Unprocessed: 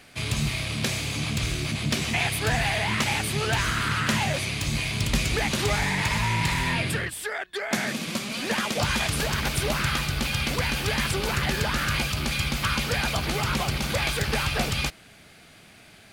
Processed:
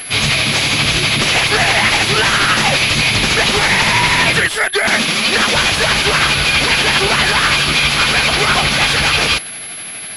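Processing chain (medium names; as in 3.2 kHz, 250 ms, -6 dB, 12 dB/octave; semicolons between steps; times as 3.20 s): tilt EQ +2.5 dB/octave; sine folder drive 15 dB, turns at -7 dBFS; granular stretch 0.63×, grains 162 ms; class-D stage that switches slowly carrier 11 kHz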